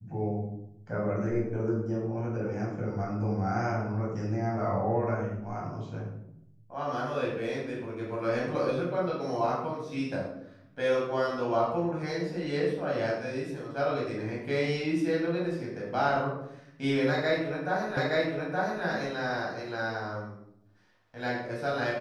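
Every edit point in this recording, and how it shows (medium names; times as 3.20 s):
17.97 s: repeat of the last 0.87 s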